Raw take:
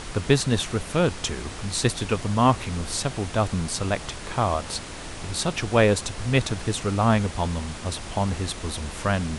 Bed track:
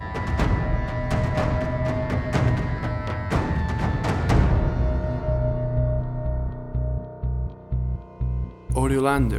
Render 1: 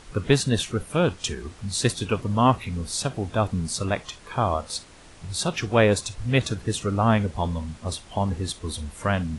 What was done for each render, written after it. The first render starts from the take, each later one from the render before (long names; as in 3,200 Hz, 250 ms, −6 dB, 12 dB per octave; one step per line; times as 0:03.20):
noise reduction from a noise print 12 dB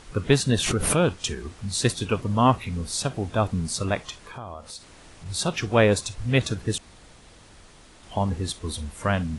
0:00.49–0:01.08: background raised ahead of every attack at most 38 dB per second
0:04.20–0:05.26: downward compressor 3 to 1, threshold −38 dBFS
0:06.78–0:08.03: fill with room tone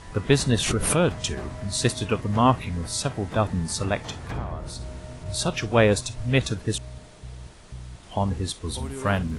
mix in bed track −14 dB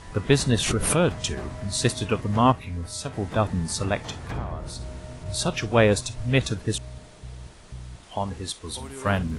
0:02.52–0:03.13: tuned comb filter 88 Hz, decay 0.19 s, harmonics odd
0:08.04–0:09.06: low-shelf EQ 350 Hz −8 dB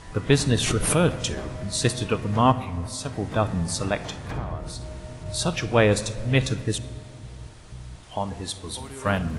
rectangular room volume 3,100 cubic metres, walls mixed, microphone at 0.53 metres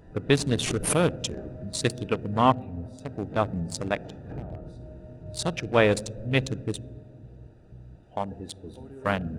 adaptive Wiener filter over 41 samples
low-shelf EQ 130 Hz −10 dB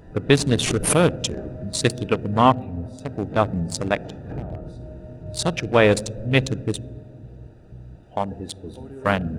level +5.5 dB
brickwall limiter −3 dBFS, peak gain reduction 2.5 dB